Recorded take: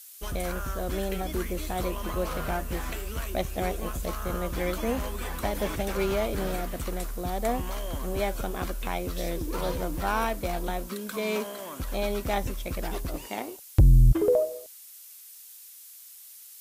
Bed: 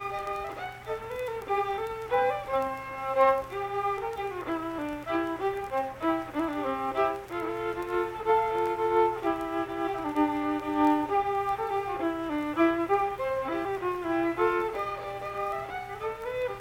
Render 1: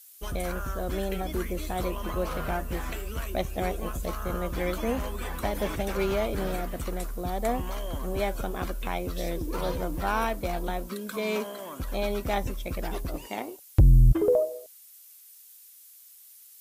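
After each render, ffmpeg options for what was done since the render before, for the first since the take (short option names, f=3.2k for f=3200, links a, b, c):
-af "afftdn=nr=6:nf=-48"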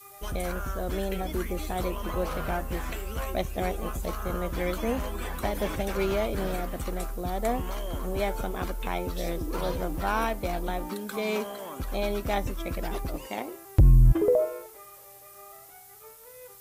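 -filter_complex "[1:a]volume=-18dB[a];[0:a][a]amix=inputs=2:normalize=0"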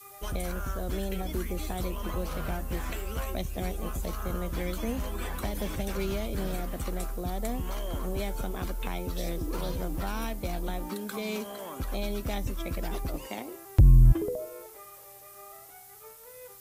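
-filter_complex "[0:a]acrossover=split=280|3000[a][b][c];[b]acompressor=threshold=-36dB:ratio=6[d];[a][d][c]amix=inputs=3:normalize=0"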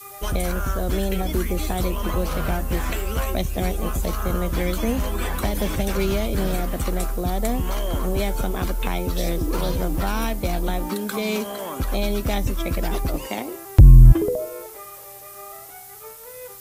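-af "volume=9dB,alimiter=limit=-2dB:level=0:latency=1"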